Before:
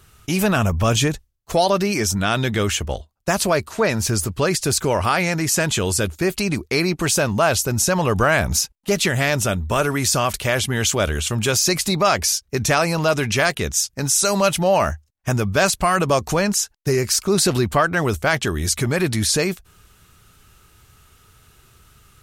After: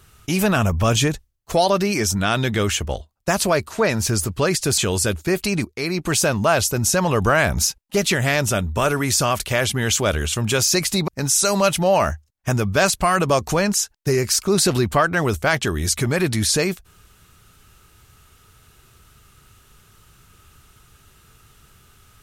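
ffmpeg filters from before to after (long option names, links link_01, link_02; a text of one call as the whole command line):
ffmpeg -i in.wav -filter_complex "[0:a]asplit=4[link_01][link_02][link_03][link_04];[link_01]atrim=end=4.782[link_05];[link_02]atrim=start=5.718:end=6.59,asetpts=PTS-STARTPTS,afade=type=out:start_time=0.868:duration=0.004:curve=hsin:silence=0.223872[link_06];[link_03]atrim=start=6.59:end=12.022,asetpts=PTS-STARTPTS,afade=type=in:duration=0.47:silence=0.223872[link_07];[link_04]atrim=start=13.878[link_08];[link_06][link_07]concat=n=2:v=0:a=1[link_09];[link_05][link_09]acrossfade=duration=0.004:curve1=hsin:curve2=hsin[link_10];[link_10][link_08]acrossfade=duration=0.004:curve1=hsin:curve2=hsin" out.wav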